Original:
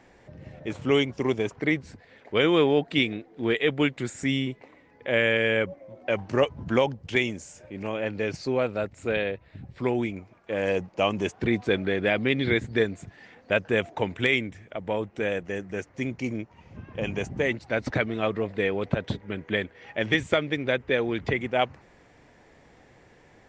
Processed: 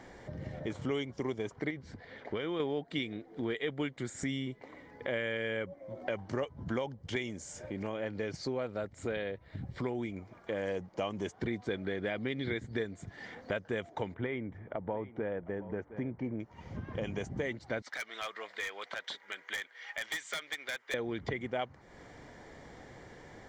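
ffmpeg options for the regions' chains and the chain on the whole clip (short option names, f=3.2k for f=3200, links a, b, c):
-filter_complex "[0:a]asettb=1/sr,asplit=3[a][b][c];[a]atrim=end=1.704[d];[b]atrim=start=1.7:end=2.6,asetpts=PTS-STARTPTS,afade=t=in:d=0.004:c=qsin,afade=t=out:st=0.896:d=0.004:c=qsin,lowpass=5.2k,acompressor=threshold=-25dB:ratio=4:attack=3.2:release=140:knee=1:detection=peak[e];[c]atrim=start=2.596[f];[d][e]acrossfade=d=0.004:c1=hsin:c2=qsin[g];[g][f]acrossfade=d=0.004:c1=qsin:c2=hsin,asettb=1/sr,asplit=3[h][i][j];[h]atrim=end=14.144[k];[i]atrim=start=14.14:end=16.4,asetpts=PTS-STARTPTS,afade=t=in:d=0.004:c=qsin,afade=t=out:st=2.256:d=0.004:c=qsin,lowpass=1.4k,equalizer=f=900:w=6:g=4.5,aecho=1:1:713:0.106,atrim=end_sample=99666[l];[j]atrim=start=16.396[m];[k][l]acrossfade=d=0.004:c1=hsin:c2=qsin[n];[n][m]acrossfade=d=0.004:c1=qsin:c2=hsin,asettb=1/sr,asplit=3[o][p][q];[o]atrim=end=17.824[r];[p]atrim=start=17.82:end=20.94,asetpts=PTS-STARTPTS,afade=t=in:d=0.004:c=qsin,afade=t=out:st=3.116:d=0.004:c=qsin,highpass=1.4k,asoftclip=type=hard:threshold=-28.5dB[s];[q]atrim=start=20.936[t];[r][s]acrossfade=d=0.004:c1=hsin:c2=qsin[u];[u][t]acrossfade=d=0.004:c1=qsin:c2=hsin,bandreject=f=2.6k:w=5.3,acompressor=threshold=-41dB:ratio=3,volume=4dB"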